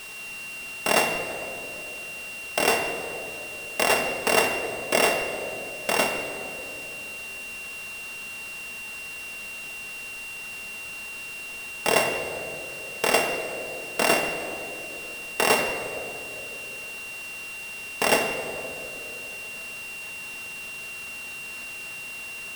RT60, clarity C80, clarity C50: 3.0 s, 7.5 dB, 6.5 dB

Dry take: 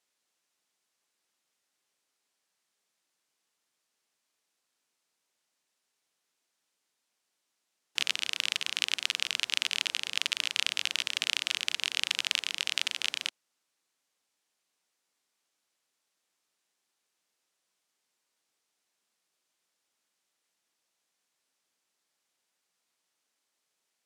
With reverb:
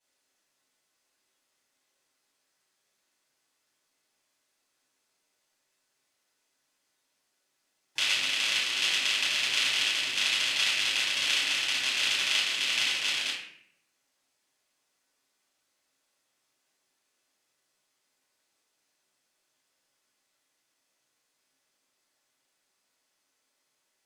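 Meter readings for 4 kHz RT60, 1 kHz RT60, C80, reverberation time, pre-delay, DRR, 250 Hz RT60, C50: 0.50 s, 0.60 s, 6.0 dB, 0.65 s, 5 ms, -9.5 dB, 0.90 s, 2.5 dB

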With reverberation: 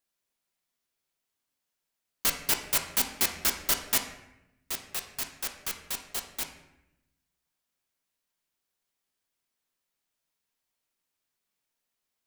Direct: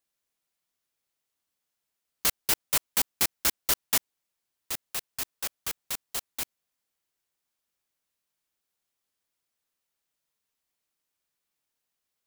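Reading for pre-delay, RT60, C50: 3 ms, 0.90 s, 8.0 dB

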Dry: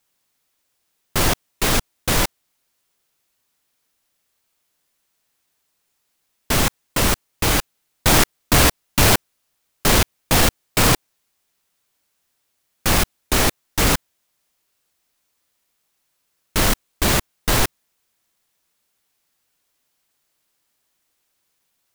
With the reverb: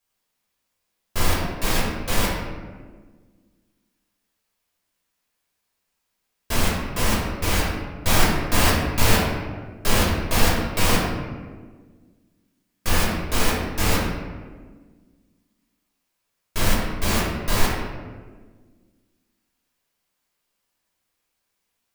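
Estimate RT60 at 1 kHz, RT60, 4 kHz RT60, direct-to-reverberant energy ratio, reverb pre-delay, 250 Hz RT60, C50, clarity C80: 1.3 s, 1.5 s, 0.85 s, -6.0 dB, 3 ms, 2.2 s, 0.5 dB, 3.0 dB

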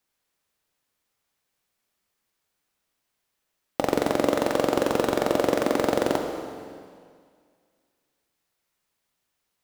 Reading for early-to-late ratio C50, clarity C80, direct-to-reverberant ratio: 5.5 dB, 6.5 dB, 4.5 dB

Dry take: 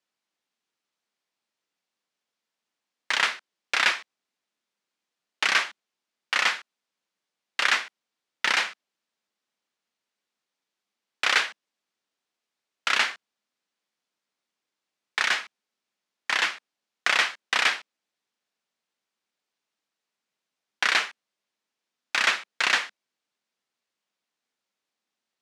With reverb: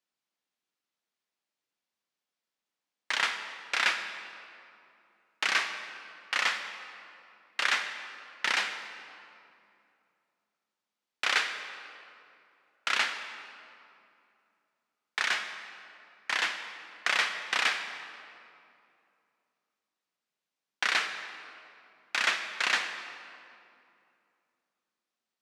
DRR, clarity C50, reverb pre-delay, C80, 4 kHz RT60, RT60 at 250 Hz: 7.5 dB, 8.0 dB, 40 ms, 8.5 dB, 1.7 s, 3.1 s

